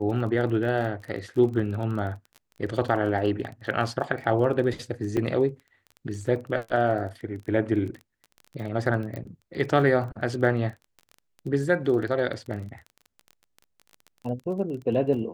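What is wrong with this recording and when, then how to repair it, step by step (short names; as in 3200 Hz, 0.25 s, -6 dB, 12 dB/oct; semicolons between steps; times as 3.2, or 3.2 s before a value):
crackle 23/s -34 dBFS
5.17 gap 3.8 ms
9.16 pop -23 dBFS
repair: de-click; interpolate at 5.17, 3.8 ms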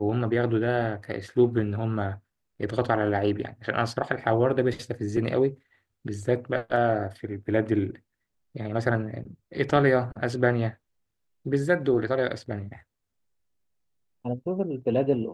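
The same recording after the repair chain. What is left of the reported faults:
9.16 pop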